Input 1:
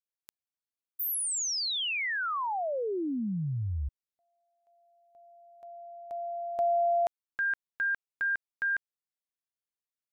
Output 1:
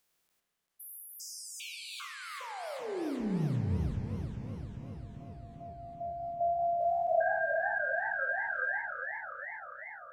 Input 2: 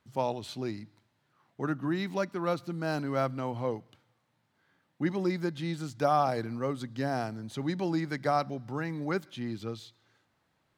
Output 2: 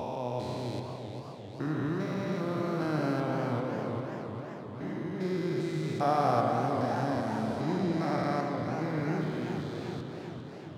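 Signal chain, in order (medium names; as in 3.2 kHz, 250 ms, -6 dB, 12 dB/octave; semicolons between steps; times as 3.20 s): spectrogram pixelated in time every 400 ms; spring tank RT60 2.8 s, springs 32 ms, chirp 60 ms, DRR 2.5 dB; modulated delay 395 ms, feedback 69%, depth 166 cents, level -8 dB; trim +1.5 dB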